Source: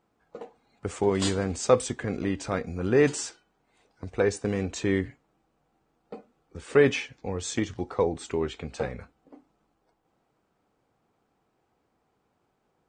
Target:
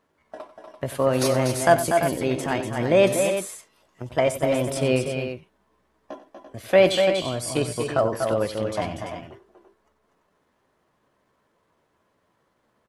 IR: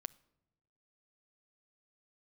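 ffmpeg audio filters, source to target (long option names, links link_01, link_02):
-filter_complex "[0:a]asetrate=58866,aresample=44100,atempo=0.749154,asplit=2[link_01][link_02];[link_02]aecho=0:1:92|241|250|340:0.211|0.447|0.251|0.335[link_03];[link_01][link_03]amix=inputs=2:normalize=0,volume=3dB"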